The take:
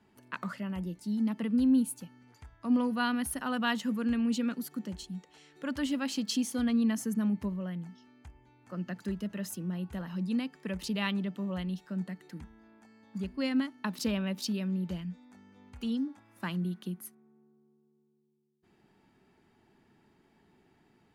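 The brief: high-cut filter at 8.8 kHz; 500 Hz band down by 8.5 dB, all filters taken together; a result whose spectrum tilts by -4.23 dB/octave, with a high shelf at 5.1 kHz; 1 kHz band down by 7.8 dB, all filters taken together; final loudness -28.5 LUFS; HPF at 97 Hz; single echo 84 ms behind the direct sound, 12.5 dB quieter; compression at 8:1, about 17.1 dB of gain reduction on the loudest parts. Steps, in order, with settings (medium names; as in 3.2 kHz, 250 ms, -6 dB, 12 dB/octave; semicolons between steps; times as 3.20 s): high-pass 97 Hz; low-pass 8.8 kHz; peaking EQ 500 Hz -8.5 dB; peaking EQ 1 kHz -8.5 dB; treble shelf 5.1 kHz +9 dB; compression 8:1, threshold -43 dBFS; delay 84 ms -12.5 dB; trim +18 dB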